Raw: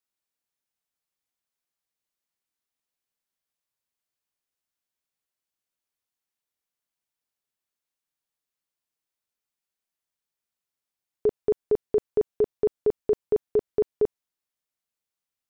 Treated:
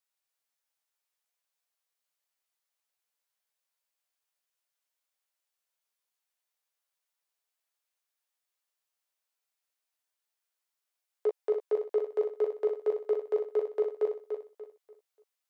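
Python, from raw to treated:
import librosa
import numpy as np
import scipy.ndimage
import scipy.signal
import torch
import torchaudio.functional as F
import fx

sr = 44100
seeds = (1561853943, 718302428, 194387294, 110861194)

p1 = scipy.signal.sosfilt(scipy.signal.butter(4, 480.0, 'highpass', fs=sr, output='sos'), x)
p2 = 10.0 ** (-32.0 / 20.0) * np.tanh(p1 / 10.0 ** (-32.0 / 20.0))
p3 = p1 + (p2 * librosa.db_to_amplitude(-6.0))
p4 = fx.doubler(p3, sr, ms=14.0, db=-6.5)
p5 = fx.echo_feedback(p4, sr, ms=292, feedback_pct=31, wet_db=-6.5)
y = p5 * librosa.db_to_amplitude(-3.5)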